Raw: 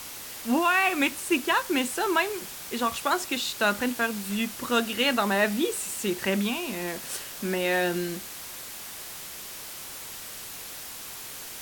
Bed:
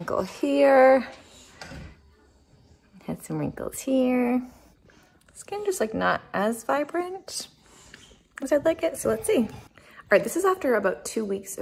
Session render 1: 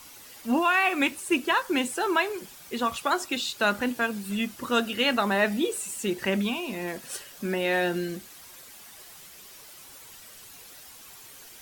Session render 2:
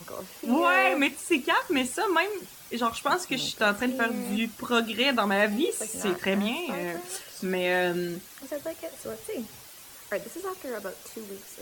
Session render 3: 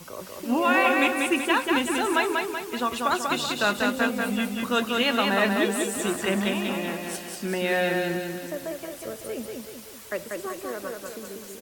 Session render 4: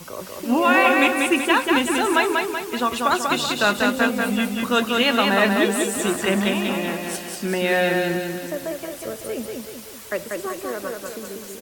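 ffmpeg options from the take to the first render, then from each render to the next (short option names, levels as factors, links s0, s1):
-af "afftdn=nr=10:nf=-40"
-filter_complex "[1:a]volume=0.237[s0];[0:a][s0]amix=inputs=2:normalize=0"
-af "aecho=1:1:190|380|570|760|950|1140|1330:0.668|0.334|0.167|0.0835|0.0418|0.0209|0.0104"
-af "volume=1.68"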